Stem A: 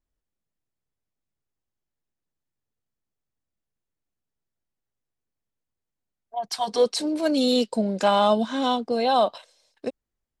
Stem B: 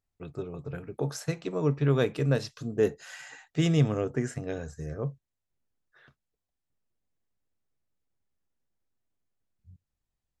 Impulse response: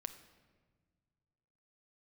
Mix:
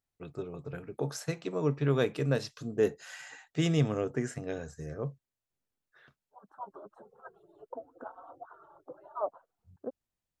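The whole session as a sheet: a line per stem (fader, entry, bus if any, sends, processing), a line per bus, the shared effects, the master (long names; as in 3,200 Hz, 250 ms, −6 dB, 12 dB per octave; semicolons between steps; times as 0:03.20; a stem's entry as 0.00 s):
−8.0 dB, 0.00 s, no send, harmonic-percussive split with one part muted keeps percussive; elliptic low-pass filter 1,400 Hz, stop band 40 dB
−1.5 dB, 0.00 s, no send, no processing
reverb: not used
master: low-shelf EQ 93 Hz −9 dB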